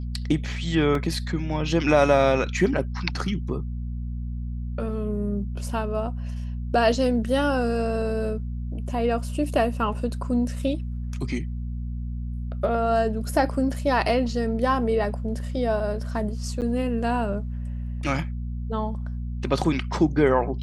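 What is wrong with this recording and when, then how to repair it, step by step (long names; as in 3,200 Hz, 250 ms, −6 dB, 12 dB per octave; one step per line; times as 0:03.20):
mains hum 60 Hz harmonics 4 −30 dBFS
0:00.95: drop-out 2.6 ms
0:16.61–0:16.62: drop-out 8.8 ms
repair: hum removal 60 Hz, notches 4
repair the gap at 0:00.95, 2.6 ms
repair the gap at 0:16.61, 8.8 ms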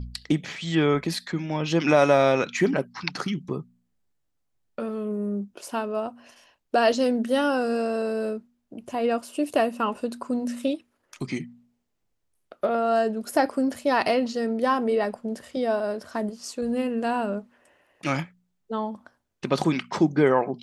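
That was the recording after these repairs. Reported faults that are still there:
none of them is left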